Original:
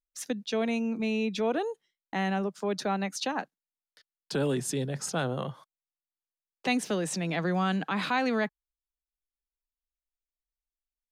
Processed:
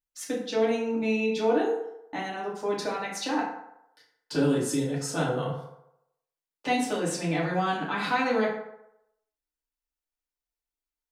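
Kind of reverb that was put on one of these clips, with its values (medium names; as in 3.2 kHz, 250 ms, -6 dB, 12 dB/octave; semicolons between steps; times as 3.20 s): FDN reverb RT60 0.8 s, low-frequency decay 0.75×, high-frequency decay 0.55×, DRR -6 dB; trim -4.5 dB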